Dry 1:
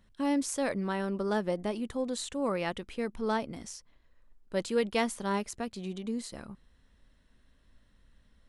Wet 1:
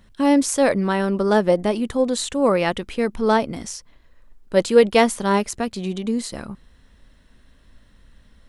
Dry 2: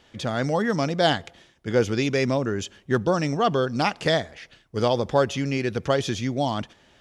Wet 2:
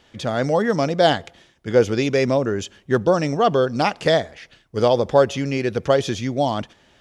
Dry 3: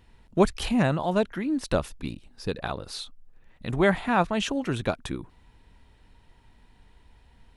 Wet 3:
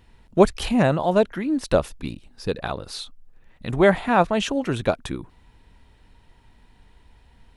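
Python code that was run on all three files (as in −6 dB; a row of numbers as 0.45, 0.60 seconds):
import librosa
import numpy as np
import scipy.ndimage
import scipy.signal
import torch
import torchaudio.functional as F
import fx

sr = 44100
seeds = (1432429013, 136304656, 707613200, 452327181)

y = fx.dynamic_eq(x, sr, hz=540.0, q=1.2, threshold_db=-32.0, ratio=4.0, max_db=5)
y = librosa.util.normalize(y) * 10.0 ** (-2 / 20.0)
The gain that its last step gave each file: +11.5, +1.5, +2.5 decibels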